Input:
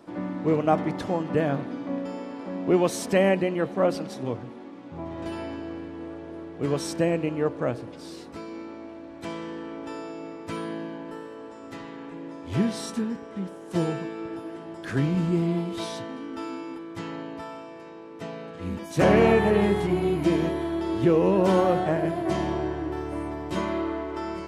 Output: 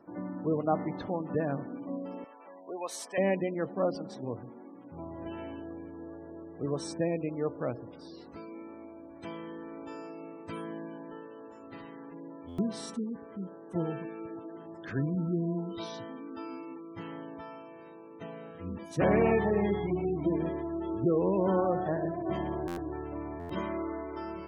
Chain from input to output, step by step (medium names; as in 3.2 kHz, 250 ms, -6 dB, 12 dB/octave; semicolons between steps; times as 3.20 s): spectral gate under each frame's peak -25 dB strong; 2.24–3.18 s: high-pass 780 Hz 12 dB/octave; buffer glitch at 12.48/22.67/23.39 s, samples 512, times 8; trim -6.5 dB